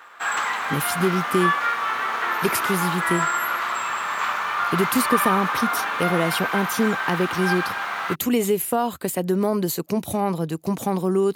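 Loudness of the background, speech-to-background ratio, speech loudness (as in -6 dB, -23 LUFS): -24.0 LUFS, 0.0 dB, -24.0 LUFS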